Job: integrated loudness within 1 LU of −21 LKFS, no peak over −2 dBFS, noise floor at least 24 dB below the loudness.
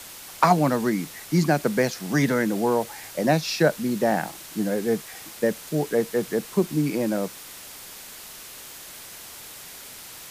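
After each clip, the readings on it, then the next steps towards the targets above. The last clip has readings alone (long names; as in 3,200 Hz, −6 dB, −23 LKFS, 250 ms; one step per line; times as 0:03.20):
background noise floor −42 dBFS; target noise floor −48 dBFS; integrated loudness −24.0 LKFS; sample peak −3.5 dBFS; target loudness −21.0 LKFS
→ noise reduction from a noise print 6 dB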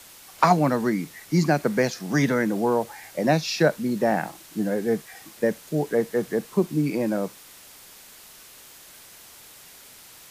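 background noise floor −48 dBFS; target noise floor −49 dBFS
→ noise reduction from a noise print 6 dB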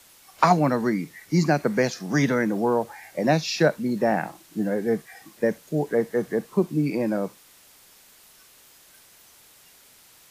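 background noise floor −54 dBFS; integrated loudness −24.5 LKFS; sample peak −3.5 dBFS; target loudness −21.0 LKFS
→ level +3.5 dB
brickwall limiter −2 dBFS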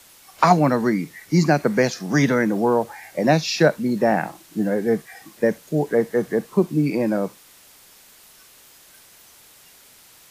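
integrated loudness −21.0 LKFS; sample peak −2.0 dBFS; background noise floor −50 dBFS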